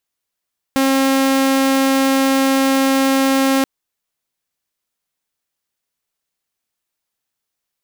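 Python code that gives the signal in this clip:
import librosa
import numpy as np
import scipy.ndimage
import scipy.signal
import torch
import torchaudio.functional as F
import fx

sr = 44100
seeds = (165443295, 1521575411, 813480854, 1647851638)

y = 10.0 ** (-10.0 / 20.0) * (2.0 * np.mod(269.0 * (np.arange(round(2.88 * sr)) / sr), 1.0) - 1.0)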